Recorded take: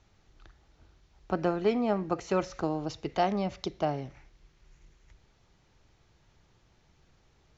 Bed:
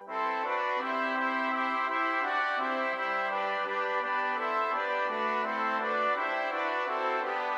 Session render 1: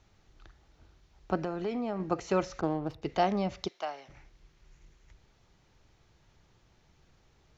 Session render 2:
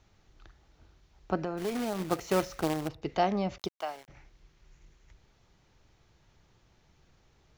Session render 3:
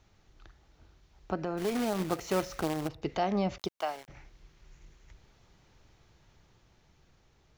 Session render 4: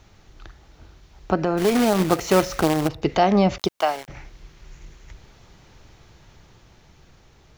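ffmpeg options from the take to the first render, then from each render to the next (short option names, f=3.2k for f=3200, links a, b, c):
-filter_complex "[0:a]asettb=1/sr,asplit=3[a][b][c];[a]atrim=end=1.384[d];[b]atrim=start=1.38:end=2,asetpts=PTS-STARTPTS,afade=t=in:d=0.004:c=qsin,afade=t=out:st=0.616:d=0.004:c=qsin,acompressor=threshold=-31dB:ratio=3:attack=3.2:release=140:knee=1:detection=peak[e];[c]atrim=start=1.996[f];[d][e]acrossfade=d=0.004:c1=hsin:c2=qsin[g];[g][f]acrossfade=d=0.004:c1=qsin:c2=hsin,asettb=1/sr,asplit=3[h][i][j];[h]atrim=end=2.614[k];[i]atrim=start=2.61:end=3.02,asetpts=PTS-STARTPTS,afade=t=in:d=0.004:c=qsin,afade=t=out:st=0.406:d=0.004:c=qsin,adynamicsmooth=sensitivity=6.5:basefreq=1.3k[l];[j]atrim=start=3.016[m];[k][l]acrossfade=d=0.004:c1=hsin:c2=qsin[n];[n][m]acrossfade=d=0.004:c1=qsin:c2=hsin,asplit=3[o][p][q];[o]afade=t=out:st=3.67:d=0.02[r];[p]highpass=900,afade=t=in:st=3.67:d=0.02,afade=t=out:st=4.08:d=0.02[s];[q]afade=t=in:st=4.08:d=0.02[t];[r][s][t]amix=inputs=3:normalize=0"
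-filter_complex "[0:a]asplit=3[a][b][c];[a]afade=t=out:st=1.57:d=0.02[d];[b]acrusher=bits=2:mode=log:mix=0:aa=0.000001,afade=t=in:st=1.57:d=0.02,afade=t=out:st=2.87:d=0.02[e];[c]afade=t=in:st=2.87:d=0.02[f];[d][e][f]amix=inputs=3:normalize=0,asettb=1/sr,asplit=3[g][h][i];[g]atrim=end=3.584[j];[h]atrim=start=3.58:end=4.08,asetpts=PTS-STARTPTS,afade=t=in:d=0.004:c=qsin,afade=t=out:st=0.496:d=0.004:c=qsin,aeval=exprs='val(0)*gte(abs(val(0)),0.00398)':c=same[k];[i]atrim=start=4.076[l];[j][k]acrossfade=d=0.004:c1=hsin:c2=qsin[m];[m][l]acrossfade=d=0.004:c1=qsin:c2=hsin"
-af "dynaudnorm=f=480:g=7:m=3dB,alimiter=limit=-20dB:level=0:latency=1:release=164"
-af "volume=12dB"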